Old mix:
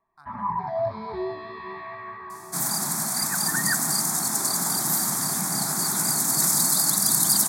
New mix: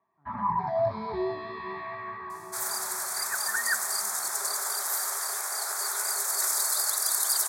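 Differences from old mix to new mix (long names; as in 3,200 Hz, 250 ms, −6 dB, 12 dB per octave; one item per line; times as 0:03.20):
speech: add flat-topped band-pass 250 Hz, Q 0.93
second sound: add Chebyshev high-pass with heavy ripple 390 Hz, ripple 6 dB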